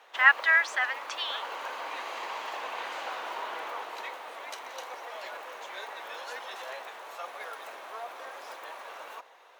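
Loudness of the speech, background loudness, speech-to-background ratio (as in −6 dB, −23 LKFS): −24.5 LKFS, −39.0 LKFS, 14.5 dB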